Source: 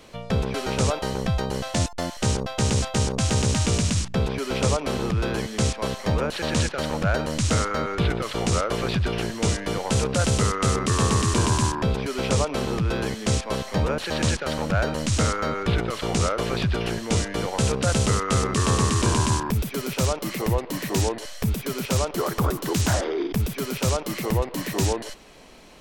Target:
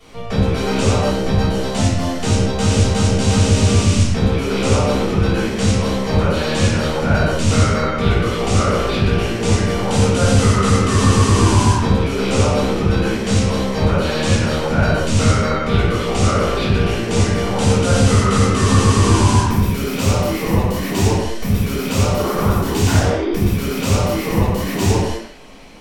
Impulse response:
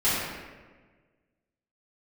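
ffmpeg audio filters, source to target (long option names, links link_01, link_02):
-filter_complex "[1:a]atrim=start_sample=2205,afade=type=out:start_time=0.34:duration=0.01,atrim=end_sample=15435,asetrate=48510,aresample=44100[link_01];[0:a][link_01]afir=irnorm=-1:irlink=0,volume=-6.5dB"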